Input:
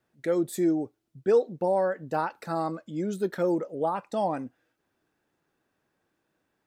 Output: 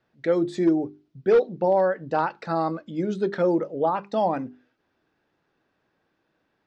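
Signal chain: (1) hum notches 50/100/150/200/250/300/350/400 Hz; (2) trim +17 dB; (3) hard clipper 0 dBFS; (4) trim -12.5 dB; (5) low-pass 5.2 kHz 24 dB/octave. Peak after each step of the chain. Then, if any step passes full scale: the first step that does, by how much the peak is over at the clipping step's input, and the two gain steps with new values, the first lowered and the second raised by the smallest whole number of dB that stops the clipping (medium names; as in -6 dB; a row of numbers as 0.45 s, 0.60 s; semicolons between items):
-12.0 dBFS, +5.0 dBFS, 0.0 dBFS, -12.5 dBFS, -12.0 dBFS; step 2, 5.0 dB; step 2 +12 dB, step 4 -7.5 dB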